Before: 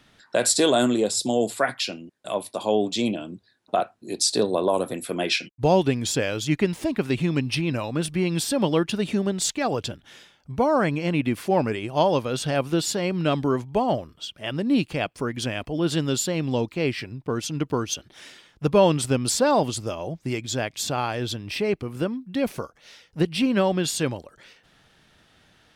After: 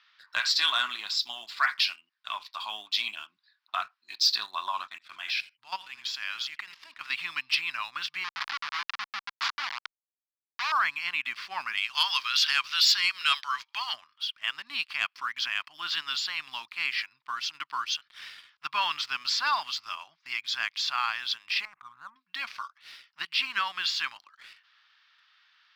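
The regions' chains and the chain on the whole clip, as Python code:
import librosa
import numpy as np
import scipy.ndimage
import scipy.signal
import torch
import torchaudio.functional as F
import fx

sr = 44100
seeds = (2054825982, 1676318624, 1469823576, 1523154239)

y = fx.chain(x, sr, fx.echo_single(ms=84, db=-15.5),
    fx.level_steps(step_db=16), at=(4.87, 7.01))
y = fx.chain(y, sr, fx.schmitt(flips_db=-20.5),
    fx.high_shelf(hz=10000.0, db=-4.0), at=(8.24, 10.72))
y = fx.chain(y, sr, fx.highpass(hz=940.0, slope=12),
    fx.tilt_eq(slope=4.5), at=(11.77, 13.94))
y = fx.chain(y, sr, fx.lowpass(hz=1200.0, slope=24),
    fx.peak_eq(hz=390.0, db=-13.0, octaves=1.6),
    fx.env_flatten(amount_pct=70), at=(21.65, 22.16))
y = scipy.signal.sosfilt(scipy.signal.ellip(3, 1.0, 40, [1100.0, 5000.0], 'bandpass', fs=sr, output='sos'), y)
y = fx.leveller(y, sr, passes=1)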